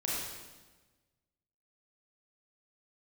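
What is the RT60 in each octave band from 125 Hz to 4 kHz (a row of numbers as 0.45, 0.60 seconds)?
1.7, 1.5, 1.3, 1.2, 1.1, 1.1 seconds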